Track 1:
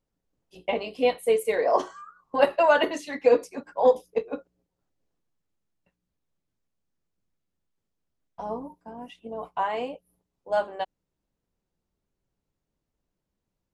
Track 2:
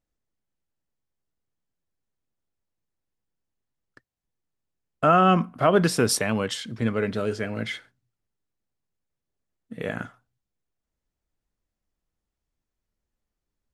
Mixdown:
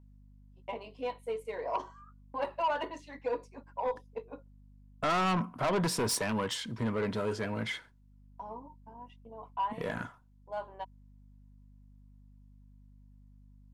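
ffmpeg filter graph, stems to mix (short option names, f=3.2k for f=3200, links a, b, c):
-filter_complex "[0:a]agate=range=-24dB:threshold=-46dB:ratio=16:detection=peak,adynamicsmooth=sensitivity=4.5:basefreq=7k,aeval=exprs='val(0)+0.00794*(sin(2*PI*50*n/s)+sin(2*PI*2*50*n/s)/2+sin(2*PI*3*50*n/s)/3+sin(2*PI*4*50*n/s)/4+sin(2*PI*5*50*n/s)/5)':c=same,volume=-13.5dB[a];[1:a]asoftclip=type=tanh:threshold=-20.5dB,volume=-3dB,asplit=2[b][c];[c]apad=whole_len=605511[d];[a][d]sidechaincompress=threshold=-42dB:ratio=8:attack=21:release=638[e];[e][b]amix=inputs=2:normalize=0,equalizer=f=970:w=6.4:g=13,asoftclip=type=tanh:threshold=-23.5dB"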